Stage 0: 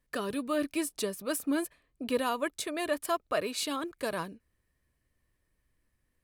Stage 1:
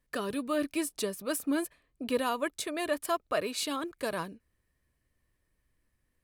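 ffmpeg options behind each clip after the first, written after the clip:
ffmpeg -i in.wav -af anull out.wav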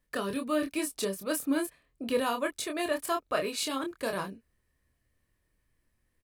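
ffmpeg -i in.wav -filter_complex "[0:a]asplit=2[link_01][link_02];[link_02]adelay=26,volume=-5dB[link_03];[link_01][link_03]amix=inputs=2:normalize=0" out.wav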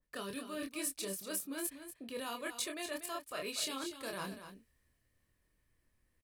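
ffmpeg -i in.wav -af "areverse,acompressor=threshold=-38dB:ratio=6,areverse,aecho=1:1:240:0.299,adynamicequalizer=threshold=0.00158:dfrequency=1900:dqfactor=0.7:tfrequency=1900:tqfactor=0.7:attack=5:release=100:ratio=0.375:range=3.5:mode=boostabove:tftype=highshelf,volume=-2dB" out.wav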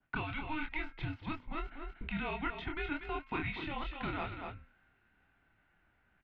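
ffmpeg -i in.wav -filter_complex "[0:a]bandreject=frequency=274.2:width_type=h:width=4,bandreject=frequency=548.4:width_type=h:width=4,bandreject=frequency=822.6:width_type=h:width=4,bandreject=frequency=1096.8:width_type=h:width=4,bandreject=frequency=1371:width_type=h:width=4,bandreject=frequency=1645.2:width_type=h:width=4,bandreject=frequency=1919.4:width_type=h:width=4,bandreject=frequency=2193.6:width_type=h:width=4,bandreject=frequency=2467.8:width_type=h:width=4,bandreject=frequency=2742:width_type=h:width=4,bandreject=frequency=3016.2:width_type=h:width=4,bandreject=frequency=3290.4:width_type=h:width=4,acrossover=split=510|1600[link_01][link_02][link_03];[link_01]acompressor=threshold=-54dB:ratio=4[link_04];[link_02]acompressor=threshold=-55dB:ratio=4[link_05];[link_03]acompressor=threshold=-49dB:ratio=4[link_06];[link_04][link_05][link_06]amix=inputs=3:normalize=0,highpass=frequency=220:width_type=q:width=0.5412,highpass=frequency=220:width_type=q:width=1.307,lowpass=frequency=3200:width_type=q:width=0.5176,lowpass=frequency=3200:width_type=q:width=0.7071,lowpass=frequency=3200:width_type=q:width=1.932,afreqshift=-300,volume=12.5dB" out.wav

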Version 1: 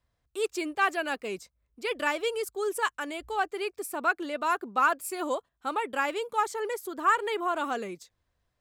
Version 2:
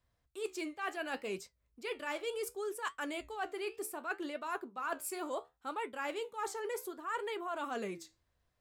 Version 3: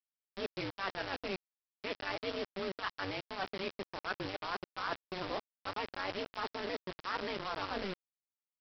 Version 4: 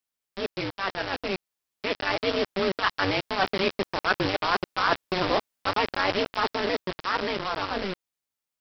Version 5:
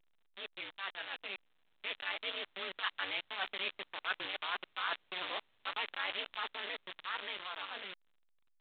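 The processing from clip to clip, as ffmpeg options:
ffmpeg -i in.wav -af "areverse,acompressor=threshold=-33dB:ratio=12,areverse,flanger=delay=8.1:depth=9.4:regen=-67:speed=0.68:shape=triangular,volume=2.5dB" out.wav
ffmpeg -i in.wav -af "tremolo=f=190:d=0.824,aresample=11025,acrusher=bits=6:mix=0:aa=0.000001,aresample=44100,volume=3dB" out.wav
ffmpeg -i in.wav -af "dynaudnorm=framelen=320:gausssize=13:maxgain=6dB,volume=8dB" out.wav
ffmpeg -i in.wav -af "aderivative,volume=1.5dB" -ar 8000 -c:a pcm_alaw out.wav

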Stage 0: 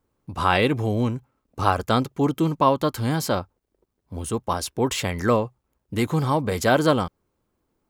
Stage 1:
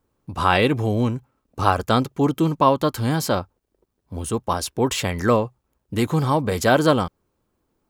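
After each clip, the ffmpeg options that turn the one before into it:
ffmpeg -i in.wav -af "bandreject=frequency=2100:width=26,volume=2dB" out.wav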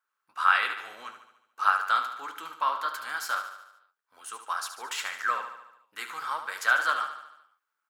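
ffmpeg -i in.wav -filter_complex "[0:a]flanger=delay=7.4:depth=9.7:regen=-59:speed=1.7:shape=triangular,highpass=frequency=1400:width_type=q:width=4.3,asplit=2[link_01][link_02];[link_02]aecho=0:1:73|146|219|292|365|438|511:0.335|0.191|0.109|0.062|0.0354|0.0202|0.0115[link_03];[link_01][link_03]amix=inputs=2:normalize=0,volume=-5.5dB" out.wav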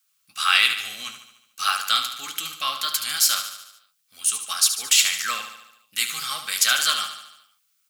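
ffmpeg -i in.wav -af "asuperstop=centerf=950:order=20:qfactor=5.7,lowshelf=frequency=270:width_type=q:width=1.5:gain=12,aexciter=amount=5.8:drive=7.8:freq=2300" out.wav

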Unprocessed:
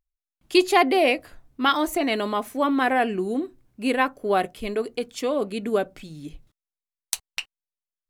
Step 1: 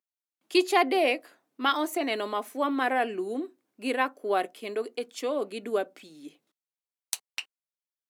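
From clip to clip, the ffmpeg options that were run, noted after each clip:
ffmpeg -i in.wav -af "highpass=frequency=260:width=0.5412,highpass=frequency=260:width=1.3066,volume=-4.5dB" out.wav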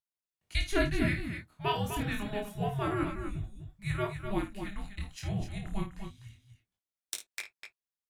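ffmpeg -i in.wav -af "flanger=delay=19:depth=7.6:speed=0.27,afreqshift=-410,aecho=1:1:52.48|250.7:0.316|0.398,volume=-2.5dB" out.wav

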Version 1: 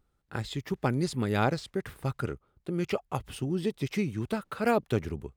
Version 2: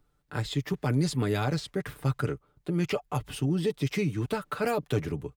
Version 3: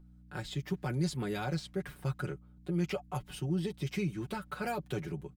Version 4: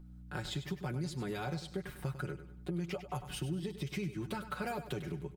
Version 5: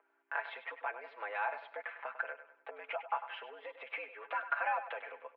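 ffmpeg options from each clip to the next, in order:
ffmpeg -i in.wav -filter_complex "[0:a]aecho=1:1:6.8:0.51,acrossover=split=110|3800[link_01][link_02][link_03];[link_02]alimiter=limit=-21.5dB:level=0:latency=1:release=19[link_04];[link_01][link_04][link_03]amix=inputs=3:normalize=0,volume=2.5dB" out.wav
ffmpeg -i in.wav -af "aeval=exprs='val(0)+0.00447*(sin(2*PI*60*n/s)+sin(2*PI*2*60*n/s)/2+sin(2*PI*3*60*n/s)/3+sin(2*PI*4*60*n/s)/4+sin(2*PI*5*60*n/s)/5)':channel_layout=same,aecho=1:1:5.5:0.68,volume=-8dB" out.wav
ffmpeg -i in.wav -filter_complex "[0:a]acompressor=threshold=-40dB:ratio=4,asplit=2[link_01][link_02];[link_02]aecho=0:1:99|198|297|396:0.251|0.0904|0.0326|0.0117[link_03];[link_01][link_03]amix=inputs=2:normalize=0,volume=4dB" out.wav
ffmpeg -i in.wav -af "highpass=frequency=590:width_type=q:width=0.5412,highpass=frequency=590:width_type=q:width=1.307,lowpass=frequency=2400:width_type=q:width=0.5176,lowpass=frequency=2400:width_type=q:width=0.7071,lowpass=frequency=2400:width_type=q:width=1.932,afreqshift=100,volume=7.5dB" out.wav

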